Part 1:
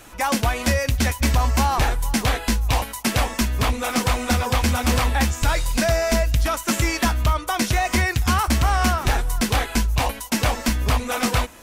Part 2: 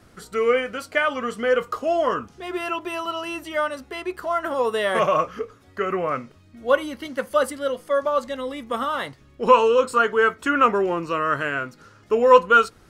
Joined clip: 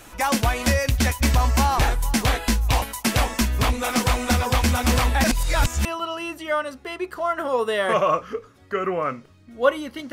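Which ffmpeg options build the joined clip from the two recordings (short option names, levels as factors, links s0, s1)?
-filter_complex "[0:a]apad=whole_dur=10.12,atrim=end=10.12,asplit=2[s0][s1];[s0]atrim=end=5.242[s2];[s1]atrim=start=5.238:end=5.852,asetpts=PTS-STARTPTS,areverse[s3];[1:a]atrim=start=2.908:end=7.18[s4];[s2][s3]acrossfade=d=0.004:c1=hsin:c2=hsin[s5];[s5][s4]acrossfade=d=0.004:c1=hsin:c2=hsin"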